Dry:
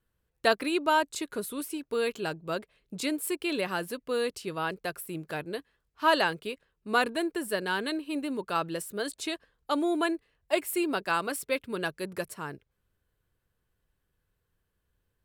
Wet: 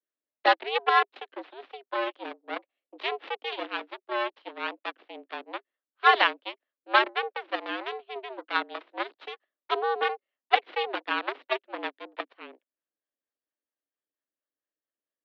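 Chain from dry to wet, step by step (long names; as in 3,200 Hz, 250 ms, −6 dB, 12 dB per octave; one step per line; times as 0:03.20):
harmonic generator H 2 −11 dB, 5 −35 dB, 7 −17 dB, 8 −18 dB, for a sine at −10 dBFS
single-sideband voice off tune +120 Hz 170–3,600 Hz
two-band tremolo in antiphase 4.4 Hz, depth 50%, crossover 510 Hz
level +6.5 dB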